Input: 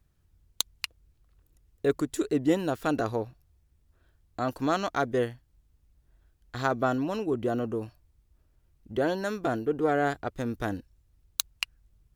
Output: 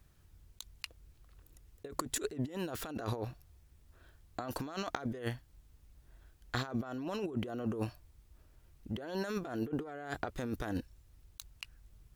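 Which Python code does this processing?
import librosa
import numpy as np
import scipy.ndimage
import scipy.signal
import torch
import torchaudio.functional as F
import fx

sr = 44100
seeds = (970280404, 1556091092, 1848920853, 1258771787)

y = fx.low_shelf(x, sr, hz=480.0, db=-4.0)
y = fx.over_compress(y, sr, threshold_db=-39.0, ratio=-1.0)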